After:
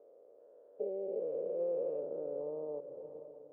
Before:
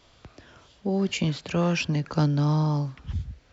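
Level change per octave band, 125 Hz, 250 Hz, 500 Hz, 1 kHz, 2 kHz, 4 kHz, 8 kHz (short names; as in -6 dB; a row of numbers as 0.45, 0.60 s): -39.0 dB, -24.0 dB, -2.5 dB, -22.5 dB, under -40 dB, under -40 dB, n/a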